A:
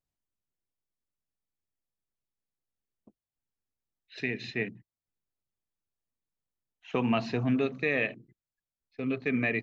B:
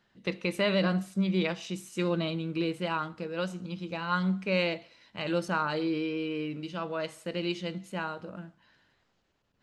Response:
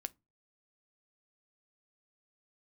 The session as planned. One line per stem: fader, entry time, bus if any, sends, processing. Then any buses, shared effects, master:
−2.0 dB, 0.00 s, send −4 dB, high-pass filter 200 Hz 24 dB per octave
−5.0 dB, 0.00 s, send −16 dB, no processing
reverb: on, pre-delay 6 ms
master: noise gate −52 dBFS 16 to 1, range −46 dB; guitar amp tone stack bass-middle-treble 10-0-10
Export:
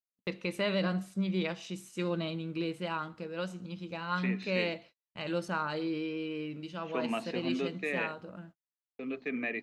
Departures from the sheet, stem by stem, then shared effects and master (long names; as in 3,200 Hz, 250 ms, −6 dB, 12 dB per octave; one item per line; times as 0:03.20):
stem A −2.0 dB → −9.0 dB
master: missing guitar amp tone stack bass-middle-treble 10-0-10